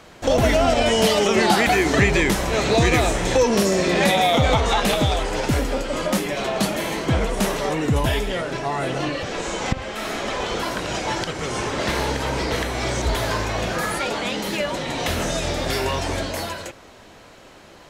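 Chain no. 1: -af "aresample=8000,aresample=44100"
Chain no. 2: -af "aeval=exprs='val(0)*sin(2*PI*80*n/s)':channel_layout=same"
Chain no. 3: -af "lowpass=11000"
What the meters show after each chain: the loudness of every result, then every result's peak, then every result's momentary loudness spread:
−21.5, −24.5, −21.5 LKFS; −4.0, −6.0, −3.5 dBFS; 9, 9, 9 LU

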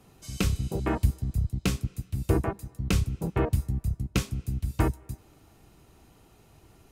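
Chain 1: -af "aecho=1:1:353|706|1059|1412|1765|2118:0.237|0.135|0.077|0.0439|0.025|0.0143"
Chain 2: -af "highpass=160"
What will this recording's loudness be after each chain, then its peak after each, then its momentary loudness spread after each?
−29.5, −33.5 LKFS; −10.0, −14.0 dBFS; 15, 10 LU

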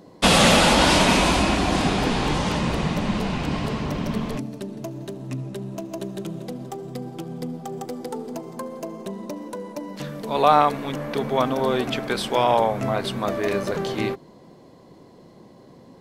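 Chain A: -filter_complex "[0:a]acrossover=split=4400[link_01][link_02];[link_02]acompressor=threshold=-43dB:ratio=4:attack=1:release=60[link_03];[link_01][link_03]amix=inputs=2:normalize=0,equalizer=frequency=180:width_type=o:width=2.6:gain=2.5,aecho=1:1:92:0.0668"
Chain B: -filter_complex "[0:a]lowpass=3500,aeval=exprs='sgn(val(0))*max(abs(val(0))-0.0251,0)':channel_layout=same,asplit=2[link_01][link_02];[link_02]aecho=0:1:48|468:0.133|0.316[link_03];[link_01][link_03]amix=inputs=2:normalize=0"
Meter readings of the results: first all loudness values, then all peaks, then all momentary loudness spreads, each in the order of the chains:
−22.5, −23.0 LKFS; −2.5, −3.5 dBFS; 16, 24 LU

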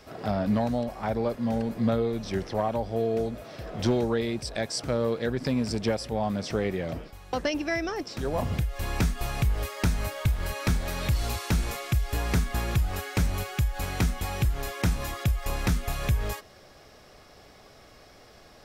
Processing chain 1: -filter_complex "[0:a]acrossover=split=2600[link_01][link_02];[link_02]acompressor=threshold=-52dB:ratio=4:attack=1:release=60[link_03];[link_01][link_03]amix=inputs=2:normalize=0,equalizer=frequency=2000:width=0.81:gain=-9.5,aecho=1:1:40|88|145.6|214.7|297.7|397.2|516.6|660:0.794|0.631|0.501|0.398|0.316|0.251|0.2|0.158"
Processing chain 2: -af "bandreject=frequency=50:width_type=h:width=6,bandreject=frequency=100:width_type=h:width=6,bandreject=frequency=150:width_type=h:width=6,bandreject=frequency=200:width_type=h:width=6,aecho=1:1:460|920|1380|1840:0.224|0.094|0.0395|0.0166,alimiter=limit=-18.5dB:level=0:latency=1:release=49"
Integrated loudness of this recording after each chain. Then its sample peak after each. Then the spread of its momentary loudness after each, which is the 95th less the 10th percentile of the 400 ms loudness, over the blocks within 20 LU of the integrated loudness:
−25.5, −30.5 LKFS; −9.0, −18.5 dBFS; 6, 5 LU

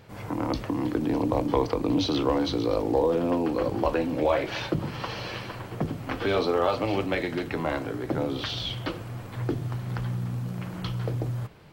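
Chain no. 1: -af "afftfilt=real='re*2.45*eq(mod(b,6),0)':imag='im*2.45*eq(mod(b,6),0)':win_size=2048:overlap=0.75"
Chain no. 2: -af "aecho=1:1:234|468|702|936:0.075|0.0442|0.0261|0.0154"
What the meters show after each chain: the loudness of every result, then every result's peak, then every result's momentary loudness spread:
−29.5, −28.0 LKFS; −14.0, −9.5 dBFS; 9, 9 LU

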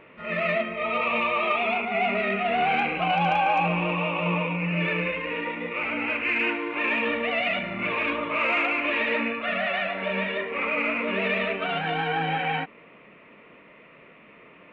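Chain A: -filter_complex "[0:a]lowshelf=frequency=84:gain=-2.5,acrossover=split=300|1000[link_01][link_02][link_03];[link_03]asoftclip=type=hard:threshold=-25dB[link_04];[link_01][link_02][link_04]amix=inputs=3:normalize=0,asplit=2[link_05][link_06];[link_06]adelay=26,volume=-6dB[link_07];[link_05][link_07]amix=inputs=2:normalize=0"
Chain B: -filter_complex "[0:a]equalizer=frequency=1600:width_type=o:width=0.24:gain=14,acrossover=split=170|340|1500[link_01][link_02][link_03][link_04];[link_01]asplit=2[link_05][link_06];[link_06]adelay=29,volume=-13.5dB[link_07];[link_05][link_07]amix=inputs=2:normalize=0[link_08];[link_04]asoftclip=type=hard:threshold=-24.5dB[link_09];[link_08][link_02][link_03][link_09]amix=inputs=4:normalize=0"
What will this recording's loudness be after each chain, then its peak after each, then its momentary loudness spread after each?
−24.5, −23.5 LKFS; −12.0, −11.0 dBFS; 4, 5 LU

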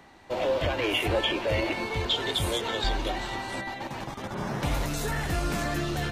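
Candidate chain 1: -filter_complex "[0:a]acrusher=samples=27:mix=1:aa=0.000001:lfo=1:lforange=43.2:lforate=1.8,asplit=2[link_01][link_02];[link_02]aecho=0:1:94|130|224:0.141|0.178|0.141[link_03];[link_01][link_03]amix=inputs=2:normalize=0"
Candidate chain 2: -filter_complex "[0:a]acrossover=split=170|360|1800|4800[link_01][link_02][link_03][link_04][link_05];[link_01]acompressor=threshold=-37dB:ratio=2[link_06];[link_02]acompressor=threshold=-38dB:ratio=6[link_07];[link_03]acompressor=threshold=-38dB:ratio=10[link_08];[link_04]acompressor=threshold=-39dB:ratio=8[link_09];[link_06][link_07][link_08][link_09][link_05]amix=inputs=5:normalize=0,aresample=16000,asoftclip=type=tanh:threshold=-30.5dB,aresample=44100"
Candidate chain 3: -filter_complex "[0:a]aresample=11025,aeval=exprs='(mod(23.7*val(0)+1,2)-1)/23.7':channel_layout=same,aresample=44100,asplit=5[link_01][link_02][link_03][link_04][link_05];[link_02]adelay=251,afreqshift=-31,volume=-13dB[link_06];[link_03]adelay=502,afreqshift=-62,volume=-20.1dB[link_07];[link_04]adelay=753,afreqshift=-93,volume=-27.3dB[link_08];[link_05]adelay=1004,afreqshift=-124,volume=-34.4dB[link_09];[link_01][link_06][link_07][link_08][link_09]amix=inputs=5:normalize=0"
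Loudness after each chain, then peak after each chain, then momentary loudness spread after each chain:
−29.0, −36.5, −31.0 LKFS; −15.0, −28.0, −21.5 dBFS; 8, 3, 4 LU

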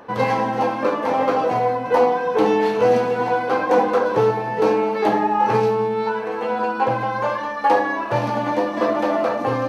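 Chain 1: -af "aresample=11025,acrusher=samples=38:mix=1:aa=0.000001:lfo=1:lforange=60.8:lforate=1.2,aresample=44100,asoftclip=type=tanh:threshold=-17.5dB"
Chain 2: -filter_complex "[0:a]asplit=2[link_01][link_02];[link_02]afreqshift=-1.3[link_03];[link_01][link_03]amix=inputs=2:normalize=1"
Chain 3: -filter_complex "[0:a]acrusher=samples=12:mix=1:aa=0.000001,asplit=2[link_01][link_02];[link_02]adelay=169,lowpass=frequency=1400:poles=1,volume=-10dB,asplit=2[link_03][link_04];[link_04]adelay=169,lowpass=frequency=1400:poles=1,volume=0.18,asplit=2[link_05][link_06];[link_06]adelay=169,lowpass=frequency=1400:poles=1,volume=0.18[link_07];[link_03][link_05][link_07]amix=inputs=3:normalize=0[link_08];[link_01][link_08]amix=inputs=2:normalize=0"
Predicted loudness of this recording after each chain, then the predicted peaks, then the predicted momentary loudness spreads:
−25.5, −23.0, −19.0 LKFS; −17.5, −6.5, −4.5 dBFS; 5, 6, 5 LU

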